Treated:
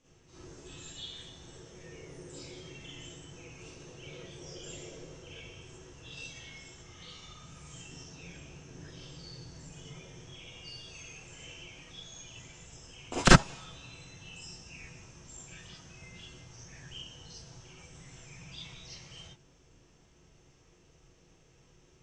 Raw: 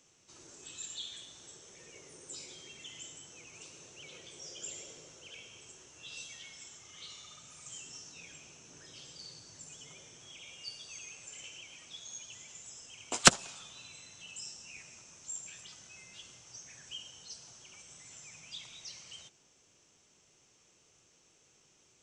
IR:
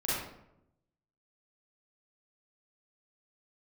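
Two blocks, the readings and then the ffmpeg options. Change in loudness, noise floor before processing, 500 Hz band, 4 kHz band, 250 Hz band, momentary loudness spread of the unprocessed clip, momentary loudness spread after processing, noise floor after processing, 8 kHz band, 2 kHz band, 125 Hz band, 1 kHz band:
+3.0 dB, -67 dBFS, +6.5 dB, -1.0 dB, +10.0 dB, 9 LU, 7 LU, -62 dBFS, -5.5 dB, +3.5 dB, +14.0 dB, +4.0 dB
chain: -filter_complex "[0:a]aemphasis=mode=reproduction:type=bsi[a];[1:a]atrim=start_sample=2205,atrim=end_sample=3528[b];[a][b]afir=irnorm=-1:irlink=0,volume=-1dB"

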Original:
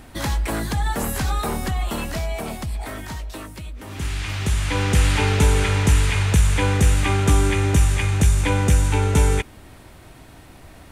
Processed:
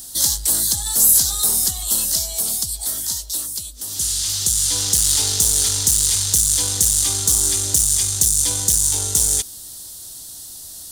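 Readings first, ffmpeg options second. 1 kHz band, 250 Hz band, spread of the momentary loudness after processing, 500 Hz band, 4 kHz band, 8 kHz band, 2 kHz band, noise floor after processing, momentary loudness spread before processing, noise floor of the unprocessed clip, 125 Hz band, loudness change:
-11.5 dB, -12.0 dB, 17 LU, -11.5 dB, +8.5 dB, +17.0 dB, -12.5 dB, -36 dBFS, 14 LU, -45 dBFS, -12.5 dB, +5.0 dB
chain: -af "aeval=exprs='0.422*(cos(1*acos(clip(val(0)/0.422,-1,1)))-cos(1*PI/2))+0.075*(cos(5*acos(clip(val(0)/0.422,-1,1)))-cos(5*PI/2))':c=same,aexciter=amount=13.6:drive=9.5:freq=3.8k,volume=-14.5dB"

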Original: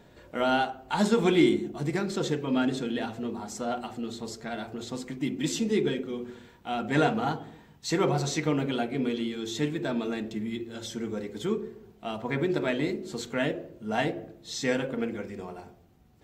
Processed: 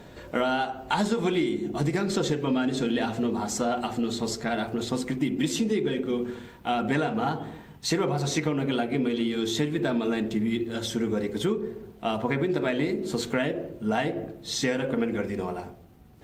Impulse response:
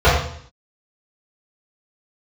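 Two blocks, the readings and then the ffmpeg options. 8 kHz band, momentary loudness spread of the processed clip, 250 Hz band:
+3.5 dB, 6 LU, +2.0 dB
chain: -af "acompressor=threshold=-30dB:ratio=16,volume=8.5dB" -ar 48000 -c:a libopus -b:a 48k

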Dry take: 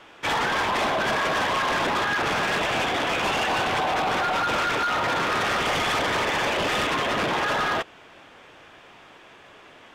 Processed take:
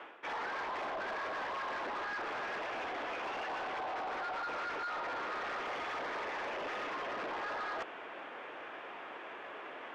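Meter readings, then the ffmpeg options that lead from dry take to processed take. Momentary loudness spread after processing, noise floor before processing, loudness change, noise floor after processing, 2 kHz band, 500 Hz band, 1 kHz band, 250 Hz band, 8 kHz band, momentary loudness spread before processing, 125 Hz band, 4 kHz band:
8 LU, -49 dBFS, -15.5 dB, -47 dBFS, -14.5 dB, -14.0 dB, -13.5 dB, -18.0 dB, -24.5 dB, 1 LU, -26.0 dB, -20.0 dB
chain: -filter_complex "[0:a]areverse,acompressor=threshold=-40dB:ratio=6,areverse,acrossover=split=270 2700:gain=0.0794 1 0.0891[a][b][c];[a][b][c]amix=inputs=3:normalize=0,acontrast=65,aeval=exprs='0.0708*(cos(1*acos(clip(val(0)/0.0708,-1,1)))-cos(1*PI/2))+0.0126*(cos(5*acos(clip(val(0)/0.0708,-1,1)))-cos(5*PI/2))':c=same,volume=-7.5dB"

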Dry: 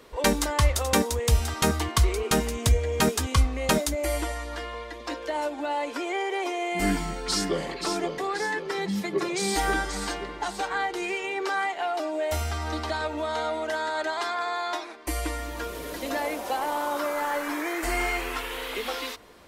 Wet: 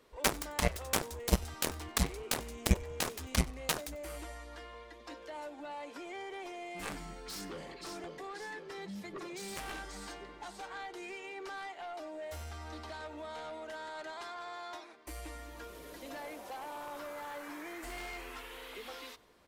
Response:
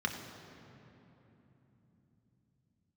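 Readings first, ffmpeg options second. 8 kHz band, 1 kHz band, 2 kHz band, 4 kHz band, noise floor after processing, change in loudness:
-9.0 dB, -14.0 dB, -12.5 dB, -10.5 dB, -52 dBFS, -12.0 dB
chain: -filter_complex "[0:a]aeval=exprs='0.376*(cos(1*acos(clip(val(0)/0.376,-1,1)))-cos(1*PI/2))+0.15*(cos(3*acos(clip(val(0)/0.376,-1,1)))-cos(3*PI/2))':c=same,asplit=3[a][b][c];[b]adelay=94,afreqshift=-99,volume=-22.5dB[d];[c]adelay=188,afreqshift=-198,volume=-31.9dB[e];[a][d][e]amix=inputs=3:normalize=0,volume=1dB"

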